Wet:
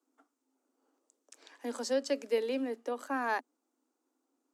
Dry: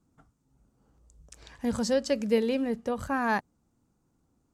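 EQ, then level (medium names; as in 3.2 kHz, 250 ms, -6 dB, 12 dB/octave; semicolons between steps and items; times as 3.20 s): steep high-pass 250 Hz 96 dB/octave; -4.5 dB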